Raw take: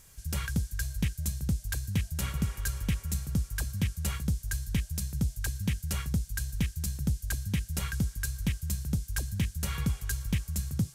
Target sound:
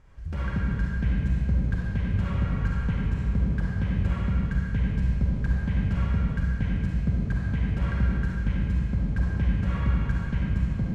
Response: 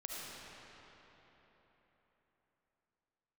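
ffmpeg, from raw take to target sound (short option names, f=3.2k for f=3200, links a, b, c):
-filter_complex "[0:a]asplit=2[a][b];[b]asoftclip=type=hard:threshold=-30dB,volume=-5dB[c];[a][c]amix=inputs=2:normalize=0,lowpass=1.6k[d];[1:a]atrim=start_sample=2205,asetrate=70560,aresample=44100[e];[d][e]afir=irnorm=-1:irlink=0,volume=8dB"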